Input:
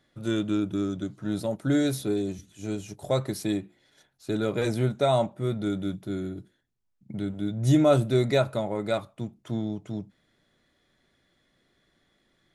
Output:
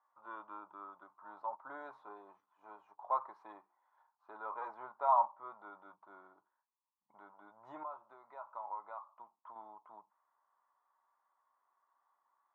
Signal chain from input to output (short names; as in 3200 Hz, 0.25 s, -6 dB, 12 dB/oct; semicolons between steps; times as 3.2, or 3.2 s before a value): 7.83–9.56 compressor 12:1, threshold -31 dBFS, peak gain reduction 16 dB; Butterworth band-pass 1000 Hz, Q 3.8; gain +7.5 dB